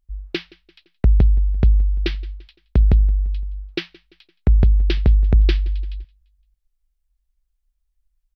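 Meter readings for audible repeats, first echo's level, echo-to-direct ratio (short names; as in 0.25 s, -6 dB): 2, -23.0 dB, -22.0 dB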